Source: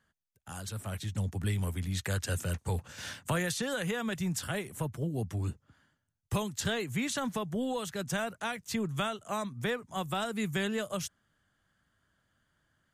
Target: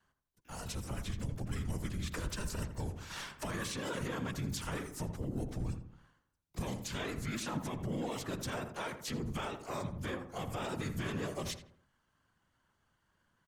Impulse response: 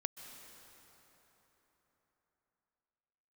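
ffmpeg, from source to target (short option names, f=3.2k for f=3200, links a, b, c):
-filter_complex "[0:a]afftfilt=real='hypot(re,im)*cos(2*PI*random(0))':imag='hypot(re,im)*sin(2*PI*random(1))':win_size=512:overlap=0.75,alimiter=level_in=9.5dB:limit=-24dB:level=0:latency=1:release=67,volume=-9.5dB,asplit=3[a][b][c];[b]asetrate=29433,aresample=44100,atempo=1.49831,volume=-3dB[d];[c]asetrate=88200,aresample=44100,atempo=0.5,volume=-16dB[e];[a][d][e]amix=inputs=3:normalize=0,asplit=2[f][g];[g]adelay=79,lowpass=f=1.6k:p=1,volume=-8dB,asplit=2[h][i];[i]adelay=79,lowpass=f=1.6k:p=1,volume=0.44,asplit=2[j][k];[k]adelay=79,lowpass=f=1.6k:p=1,volume=0.44,asplit=2[l][m];[m]adelay=79,lowpass=f=1.6k:p=1,volume=0.44,asplit=2[n][o];[o]adelay=79,lowpass=f=1.6k:p=1,volume=0.44[p];[h][j][l][n][p]amix=inputs=5:normalize=0[q];[f][q]amix=inputs=2:normalize=0,asetrate=42336,aresample=44100,volume=2.5dB"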